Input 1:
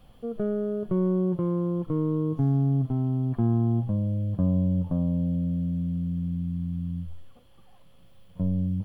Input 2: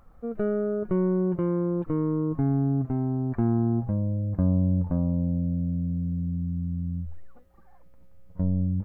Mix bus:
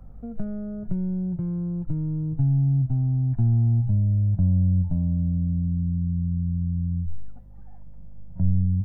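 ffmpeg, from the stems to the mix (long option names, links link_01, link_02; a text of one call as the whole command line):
ffmpeg -i stem1.wav -i stem2.wav -filter_complex "[0:a]lowpass=frequency=1000:width=0.5412,lowpass=frequency=1000:width=1.3066,volume=-1.5dB[link_01];[1:a]aeval=exprs='val(0)+0.00355*(sin(2*PI*50*n/s)+sin(2*PI*2*50*n/s)/2+sin(2*PI*3*50*n/s)/3+sin(2*PI*4*50*n/s)/4+sin(2*PI*5*50*n/s)/5)':channel_layout=same,volume=-5.5dB[link_02];[link_01][link_02]amix=inputs=2:normalize=0,lowshelf=frequency=190:gain=10,bandreject=frequency=1100:width=9,acrossover=split=130[link_03][link_04];[link_04]acompressor=threshold=-36dB:ratio=3[link_05];[link_03][link_05]amix=inputs=2:normalize=0" out.wav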